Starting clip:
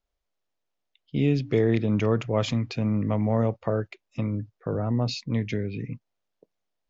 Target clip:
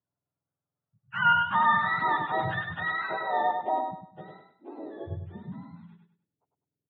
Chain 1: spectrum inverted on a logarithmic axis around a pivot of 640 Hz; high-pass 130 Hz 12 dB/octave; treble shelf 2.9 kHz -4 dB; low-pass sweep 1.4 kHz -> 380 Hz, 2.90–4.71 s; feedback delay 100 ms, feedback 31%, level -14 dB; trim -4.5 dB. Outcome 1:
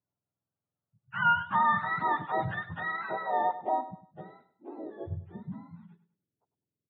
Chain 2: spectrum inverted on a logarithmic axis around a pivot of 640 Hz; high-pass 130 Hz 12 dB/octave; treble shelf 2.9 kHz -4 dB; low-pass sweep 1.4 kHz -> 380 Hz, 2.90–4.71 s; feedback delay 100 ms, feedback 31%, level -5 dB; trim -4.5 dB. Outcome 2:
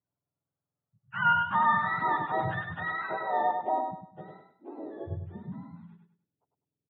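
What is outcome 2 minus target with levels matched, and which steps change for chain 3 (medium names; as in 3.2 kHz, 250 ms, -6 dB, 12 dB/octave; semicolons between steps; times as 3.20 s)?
4 kHz band -4.5 dB
change: treble shelf 2.9 kHz +8 dB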